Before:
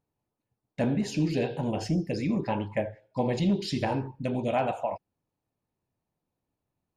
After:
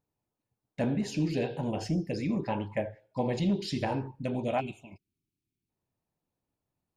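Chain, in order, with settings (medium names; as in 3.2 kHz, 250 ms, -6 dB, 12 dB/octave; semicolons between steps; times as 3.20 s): time-frequency box 4.60–5.69 s, 430–2100 Hz -26 dB; trim -2.5 dB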